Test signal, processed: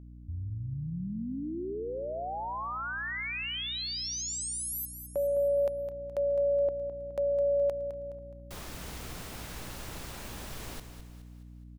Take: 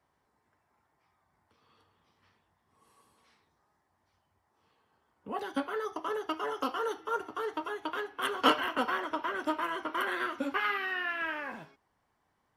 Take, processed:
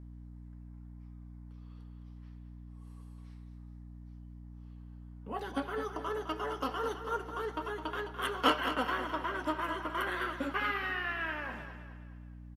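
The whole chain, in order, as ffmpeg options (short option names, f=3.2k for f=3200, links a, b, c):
-filter_complex "[0:a]asplit=2[a][b];[b]aecho=0:1:210|420|630|840|1050:0.316|0.139|0.0612|0.0269|0.0119[c];[a][c]amix=inputs=2:normalize=0,aeval=exprs='val(0)+0.00631*(sin(2*PI*60*n/s)+sin(2*PI*2*60*n/s)/2+sin(2*PI*3*60*n/s)/3+sin(2*PI*4*60*n/s)/4+sin(2*PI*5*60*n/s)/5)':c=same,asplit=2[d][e];[e]adelay=239,lowpass=f=2.9k:p=1,volume=-23dB,asplit=2[f][g];[g]adelay=239,lowpass=f=2.9k:p=1,volume=0.28[h];[f][h]amix=inputs=2:normalize=0[i];[d][i]amix=inputs=2:normalize=0,volume=-2.5dB"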